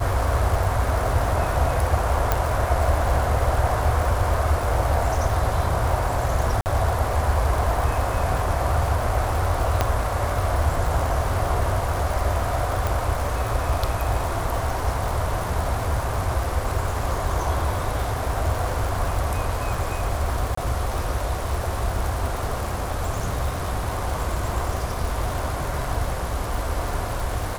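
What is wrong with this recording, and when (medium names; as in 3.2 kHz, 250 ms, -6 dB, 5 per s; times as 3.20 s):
crackle 240 per s -28 dBFS
2.32 s: pop
6.61–6.66 s: dropout 49 ms
9.81 s: pop -5 dBFS
12.87 s: pop
20.55–20.57 s: dropout 24 ms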